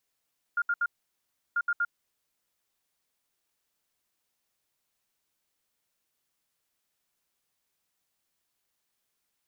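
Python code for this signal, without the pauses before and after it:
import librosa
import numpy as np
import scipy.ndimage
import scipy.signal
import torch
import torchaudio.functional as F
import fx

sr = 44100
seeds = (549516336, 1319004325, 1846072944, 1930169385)

y = fx.beep_pattern(sr, wave='sine', hz=1410.0, on_s=0.05, off_s=0.07, beeps=3, pause_s=0.7, groups=2, level_db=-23.5)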